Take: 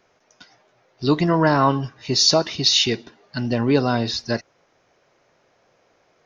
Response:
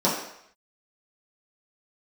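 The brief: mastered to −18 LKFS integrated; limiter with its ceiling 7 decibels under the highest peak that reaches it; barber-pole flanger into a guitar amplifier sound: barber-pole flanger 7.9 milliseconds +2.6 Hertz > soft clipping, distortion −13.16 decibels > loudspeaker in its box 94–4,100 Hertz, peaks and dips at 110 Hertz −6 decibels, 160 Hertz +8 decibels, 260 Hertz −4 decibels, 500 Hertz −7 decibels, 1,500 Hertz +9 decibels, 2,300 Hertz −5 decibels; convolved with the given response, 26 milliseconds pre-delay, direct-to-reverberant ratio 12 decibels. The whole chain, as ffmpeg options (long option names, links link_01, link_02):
-filter_complex "[0:a]alimiter=limit=-11dB:level=0:latency=1,asplit=2[link_01][link_02];[1:a]atrim=start_sample=2205,adelay=26[link_03];[link_02][link_03]afir=irnorm=-1:irlink=0,volume=-27.5dB[link_04];[link_01][link_04]amix=inputs=2:normalize=0,asplit=2[link_05][link_06];[link_06]adelay=7.9,afreqshift=2.6[link_07];[link_05][link_07]amix=inputs=2:normalize=1,asoftclip=threshold=-21dB,highpass=94,equalizer=frequency=110:width_type=q:width=4:gain=-6,equalizer=frequency=160:width_type=q:width=4:gain=8,equalizer=frequency=260:width_type=q:width=4:gain=-4,equalizer=frequency=500:width_type=q:width=4:gain=-7,equalizer=frequency=1500:width_type=q:width=4:gain=9,equalizer=frequency=2300:width_type=q:width=4:gain=-5,lowpass=frequency=4100:width=0.5412,lowpass=frequency=4100:width=1.3066,volume=11dB"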